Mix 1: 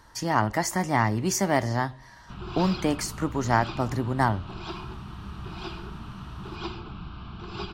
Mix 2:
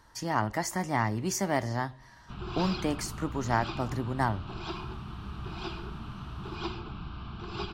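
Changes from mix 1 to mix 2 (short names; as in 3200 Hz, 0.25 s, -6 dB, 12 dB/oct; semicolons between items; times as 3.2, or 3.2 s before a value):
speech -5.0 dB; reverb: off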